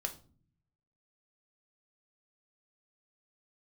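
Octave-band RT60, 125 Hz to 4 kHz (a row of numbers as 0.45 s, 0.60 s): 1.2 s, 0.90 s, 0.45 s, 0.35 s, 0.30 s, 0.30 s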